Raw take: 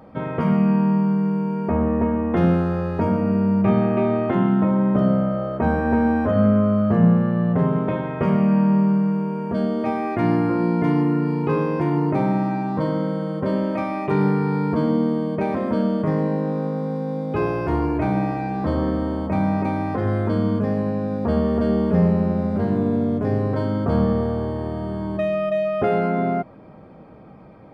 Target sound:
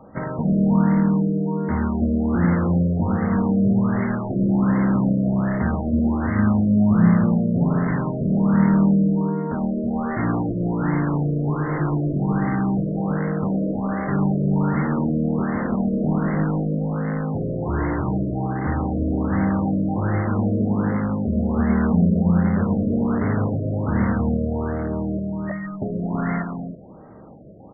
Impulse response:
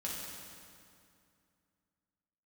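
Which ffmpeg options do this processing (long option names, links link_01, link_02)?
-filter_complex "[0:a]acrossover=split=320|1100[link_01][link_02][link_03];[link_02]aeval=exprs='(mod(17.8*val(0)+1,2)-1)/17.8':channel_layout=same[link_04];[link_01][link_04][link_03]amix=inputs=3:normalize=0,asplit=2[link_05][link_06];[link_06]asetrate=66075,aresample=44100,atempo=0.66742,volume=-18dB[link_07];[link_05][link_07]amix=inputs=2:normalize=0,aecho=1:1:322:0.596,afftfilt=real='re*lt(b*sr/1024,660*pow(2200/660,0.5+0.5*sin(2*PI*1.3*pts/sr)))':imag='im*lt(b*sr/1024,660*pow(2200/660,0.5+0.5*sin(2*PI*1.3*pts/sr)))':win_size=1024:overlap=0.75"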